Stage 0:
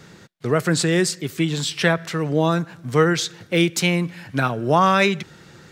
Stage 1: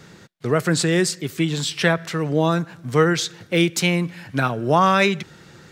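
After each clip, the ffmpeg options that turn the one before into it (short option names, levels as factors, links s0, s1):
-af anull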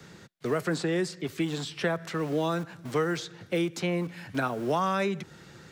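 -filter_complex "[0:a]acrossover=split=110|1400[s0][s1][s2];[s0]aeval=exprs='(mod(89.1*val(0)+1,2)-1)/89.1':c=same[s3];[s3][s1][s2]amix=inputs=3:normalize=0,acrossover=split=190|1500|5500[s4][s5][s6][s7];[s4]acompressor=threshold=0.0158:ratio=4[s8];[s5]acompressor=threshold=0.0891:ratio=4[s9];[s6]acompressor=threshold=0.0158:ratio=4[s10];[s7]acompressor=threshold=0.00501:ratio=4[s11];[s8][s9][s10][s11]amix=inputs=4:normalize=0,volume=0.631"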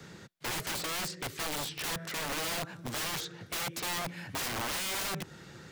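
-af "aeval=exprs='(mod(29.9*val(0)+1,2)-1)/29.9':c=same"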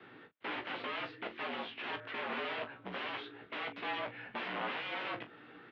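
-filter_complex "[0:a]asplit=2[s0][s1];[s1]aecho=0:1:17|42:0.531|0.251[s2];[s0][s2]amix=inputs=2:normalize=0,highpass=f=270:t=q:w=0.5412,highpass=f=270:t=q:w=1.307,lowpass=f=3200:t=q:w=0.5176,lowpass=f=3200:t=q:w=0.7071,lowpass=f=3200:t=q:w=1.932,afreqshift=-54,volume=0.708"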